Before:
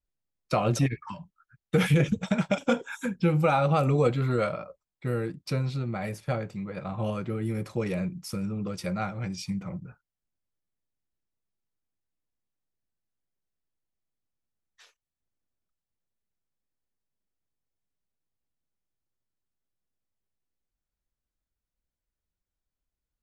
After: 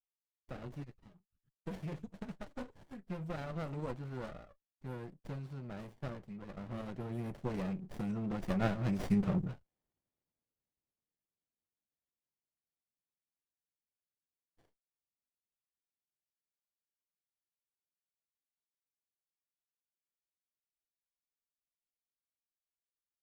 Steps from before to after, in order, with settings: Doppler pass-by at 9.57, 14 m/s, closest 6.5 m; low shelf 83 Hz -10 dB; running maximum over 33 samples; gain +7 dB

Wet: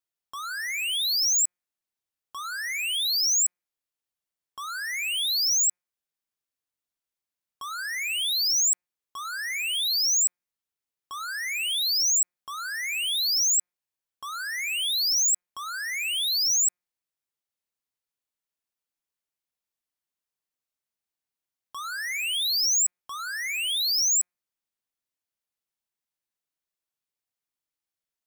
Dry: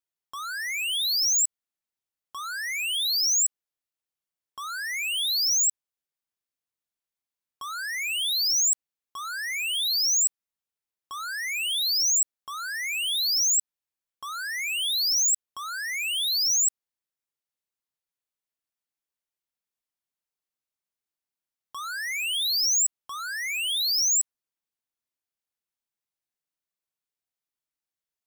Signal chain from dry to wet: de-hum 178.8 Hz, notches 14

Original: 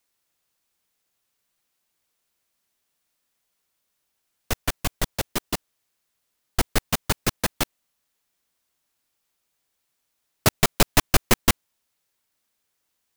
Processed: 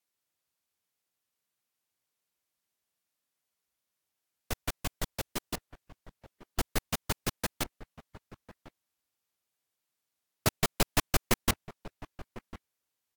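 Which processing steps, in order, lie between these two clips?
outdoor echo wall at 180 m, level -16 dB; gain -8.5 dB; Vorbis 96 kbps 48000 Hz

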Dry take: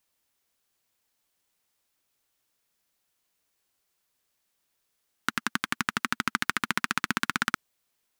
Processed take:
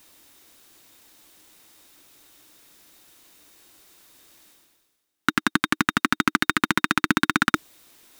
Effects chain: reverse; upward compressor, threshold -31 dBFS; reverse; sample leveller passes 2; small resonant body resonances 310/3700 Hz, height 10 dB, ringing for 40 ms; gain +1 dB

